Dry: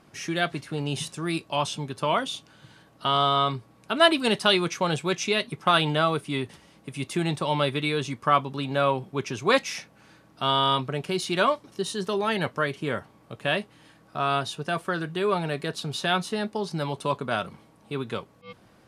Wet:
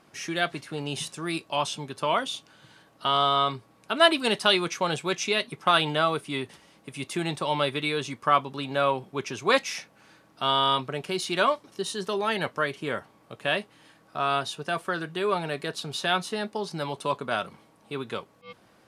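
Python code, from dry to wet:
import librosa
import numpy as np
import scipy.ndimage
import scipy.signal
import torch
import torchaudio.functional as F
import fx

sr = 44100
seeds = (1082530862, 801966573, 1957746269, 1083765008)

y = fx.low_shelf(x, sr, hz=200.0, db=-9.0)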